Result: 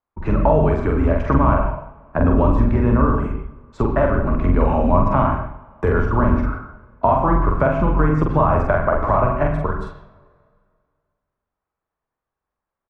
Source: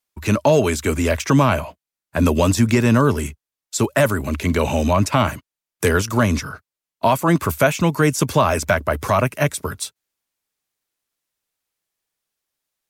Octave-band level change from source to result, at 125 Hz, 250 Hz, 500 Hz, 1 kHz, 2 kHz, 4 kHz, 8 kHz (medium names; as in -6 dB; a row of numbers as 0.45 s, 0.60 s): +1.0 dB, -0.5 dB, 0.0 dB, +2.0 dB, -5.5 dB, under -20 dB, under -30 dB